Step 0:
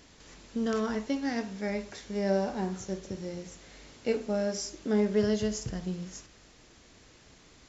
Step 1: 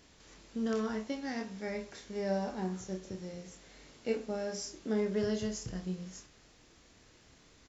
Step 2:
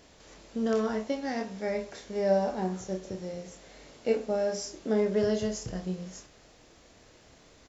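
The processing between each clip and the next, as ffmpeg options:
ffmpeg -i in.wav -filter_complex "[0:a]asplit=2[link_01][link_02];[link_02]adelay=27,volume=-6dB[link_03];[link_01][link_03]amix=inputs=2:normalize=0,volume=-5.5dB" out.wav
ffmpeg -i in.wav -af "equalizer=frequency=610:width_type=o:width=0.98:gain=7,volume=3dB" out.wav

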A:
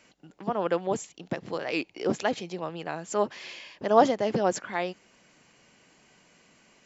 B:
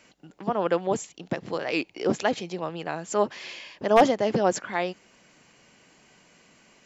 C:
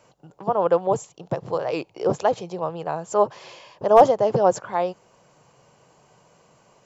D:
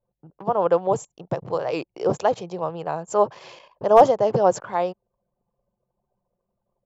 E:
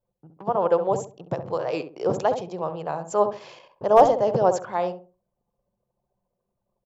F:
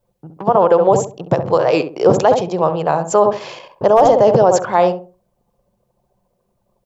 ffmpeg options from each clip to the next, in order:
ffmpeg -i in.wav -af "aeval=exprs='0.355*(abs(mod(val(0)/0.355+3,4)-2)-1)':channel_layout=same,volume=2.5dB" out.wav
ffmpeg -i in.wav -af "equalizer=frequency=125:width_type=o:width=1:gain=11,equalizer=frequency=250:width_type=o:width=1:gain=-8,equalizer=frequency=500:width_type=o:width=1:gain=7,equalizer=frequency=1000:width_type=o:width=1:gain=8,equalizer=frequency=2000:width_type=o:width=1:gain=-9,equalizer=frequency=4000:width_type=o:width=1:gain=-3,volume=-1dB" out.wav
ffmpeg -i in.wav -af "anlmdn=0.0631" out.wav
ffmpeg -i in.wav -filter_complex "[0:a]asplit=2[link_01][link_02];[link_02]adelay=67,lowpass=frequency=930:poles=1,volume=-7dB,asplit=2[link_03][link_04];[link_04]adelay=67,lowpass=frequency=930:poles=1,volume=0.31,asplit=2[link_05][link_06];[link_06]adelay=67,lowpass=frequency=930:poles=1,volume=0.31,asplit=2[link_07][link_08];[link_08]adelay=67,lowpass=frequency=930:poles=1,volume=0.31[link_09];[link_01][link_03][link_05][link_07][link_09]amix=inputs=5:normalize=0,volume=-2dB" out.wav
ffmpeg -i in.wav -af "alimiter=level_in=14dB:limit=-1dB:release=50:level=0:latency=1,volume=-1dB" out.wav

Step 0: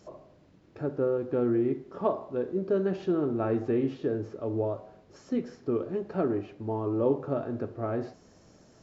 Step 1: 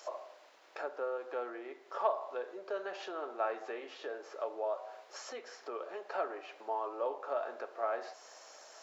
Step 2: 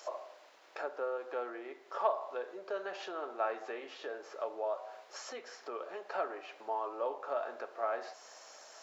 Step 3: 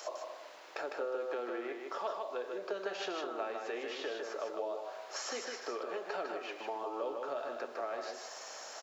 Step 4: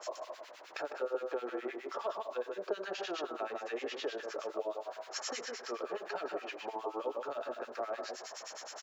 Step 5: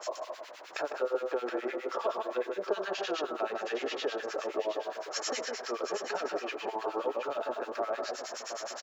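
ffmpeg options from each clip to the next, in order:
ffmpeg -i in.wav -af "acompressor=threshold=-40dB:ratio=2,highpass=frequency=640:width=0.5412,highpass=frequency=640:width=1.3066,volume=9.5dB" out.wav
ffmpeg -i in.wav -af "asubboost=boost=2.5:cutoff=180,volume=1dB" out.wav
ffmpeg -i in.wav -filter_complex "[0:a]acrossover=split=360|2800[link_01][link_02][link_03];[link_02]acompressor=threshold=-46dB:ratio=6[link_04];[link_01][link_04][link_03]amix=inputs=3:normalize=0,aecho=1:1:154:0.596,volume=6dB" out.wav
ffmpeg -i in.wav -filter_complex "[0:a]acrossover=split=1300[link_01][link_02];[link_01]aeval=exprs='val(0)*(1-1/2+1/2*cos(2*PI*9.6*n/s))':channel_layout=same[link_03];[link_02]aeval=exprs='val(0)*(1-1/2-1/2*cos(2*PI*9.6*n/s))':channel_layout=same[link_04];[link_03][link_04]amix=inputs=2:normalize=0,volume=4.5dB" out.wav
ffmpeg -i in.wav -af "aecho=1:1:720:0.376,volume=4.5dB" out.wav

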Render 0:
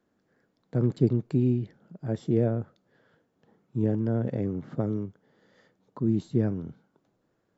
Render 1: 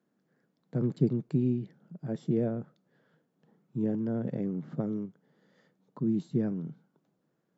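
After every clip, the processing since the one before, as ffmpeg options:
ffmpeg -i in.wav -af "lowshelf=frequency=110:width_type=q:width=3:gain=-11.5,volume=-5.5dB" out.wav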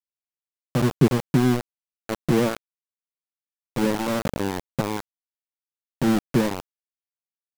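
ffmpeg -i in.wav -af "aeval=exprs='val(0)*gte(abs(val(0)),0.0376)':channel_layout=same,volume=8.5dB" out.wav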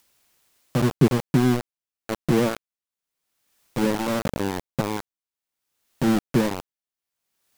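ffmpeg -i in.wav -af "acompressor=mode=upward:threshold=-40dB:ratio=2.5" out.wav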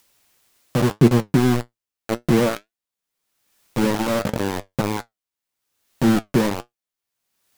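ffmpeg -i in.wav -af "flanger=delay=8.3:depth=2.2:regen=64:speed=1.8:shape=sinusoidal,volume=7.5dB" out.wav

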